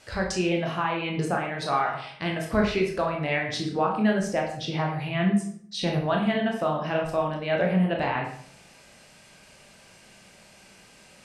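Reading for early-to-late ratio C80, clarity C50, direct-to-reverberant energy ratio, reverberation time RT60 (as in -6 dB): 9.0 dB, 5.0 dB, 0.0 dB, 0.60 s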